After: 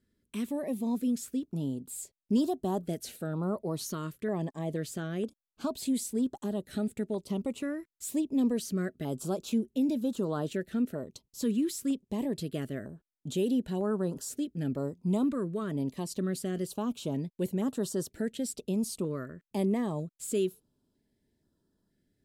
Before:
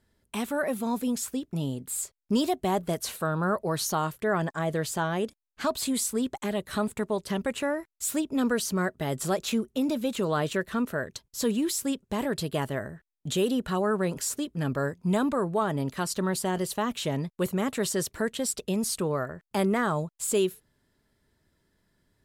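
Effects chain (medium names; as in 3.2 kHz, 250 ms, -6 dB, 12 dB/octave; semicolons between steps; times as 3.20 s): peaking EQ 260 Hz +8.5 dB 1.5 oct; step-sequenced notch 2.1 Hz 800–2200 Hz; trim -8.5 dB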